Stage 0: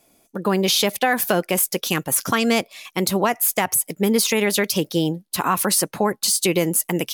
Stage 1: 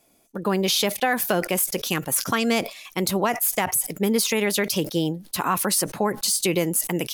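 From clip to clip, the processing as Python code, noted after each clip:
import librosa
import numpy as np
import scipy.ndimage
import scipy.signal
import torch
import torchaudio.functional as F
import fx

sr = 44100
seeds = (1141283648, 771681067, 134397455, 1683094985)

y = fx.sustainer(x, sr, db_per_s=140.0)
y = F.gain(torch.from_numpy(y), -3.0).numpy()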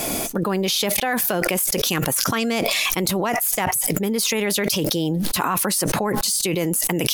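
y = fx.env_flatten(x, sr, amount_pct=100)
y = F.gain(torch.from_numpy(y), -3.0).numpy()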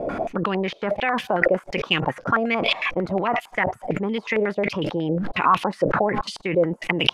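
y = fx.filter_held_lowpass(x, sr, hz=11.0, low_hz=550.0, high_hz=3000.0)
y = F.gain(torch.from_numpy(y), -3.0).numpy()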